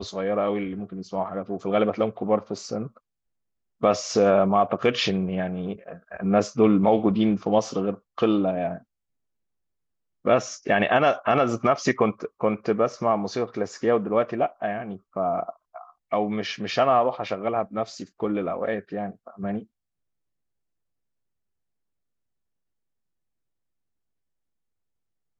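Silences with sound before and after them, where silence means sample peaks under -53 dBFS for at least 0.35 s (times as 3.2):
2.98–3.81
8.83–10.25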